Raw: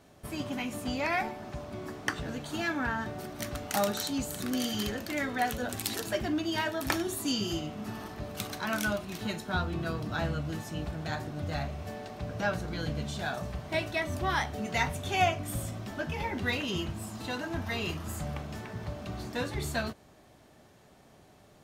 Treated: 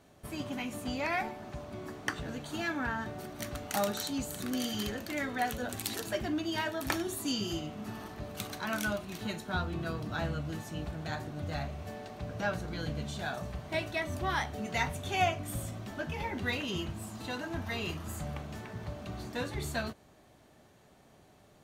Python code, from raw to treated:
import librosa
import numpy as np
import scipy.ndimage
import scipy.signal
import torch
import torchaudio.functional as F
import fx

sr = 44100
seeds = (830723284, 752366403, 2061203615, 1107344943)

y = fx.notch(x, sr, hz=5200.0, q=22.0)
y = F.gain(torch.from_numpy(y), -2.5).numpy()